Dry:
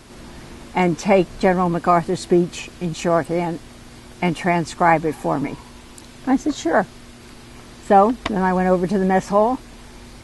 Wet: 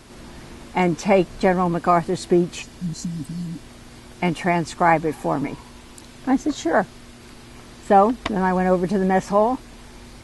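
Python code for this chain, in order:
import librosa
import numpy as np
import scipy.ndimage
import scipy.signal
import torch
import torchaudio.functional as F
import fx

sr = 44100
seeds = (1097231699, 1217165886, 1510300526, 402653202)

y = fx.spec_repair(x, sr, seeds[0], start_s=2.65, length_s=0.93, low_hz=320.0, high_hz=4000.0, source='after')
y = y * 10.0 ** (-1.5 / 20.0)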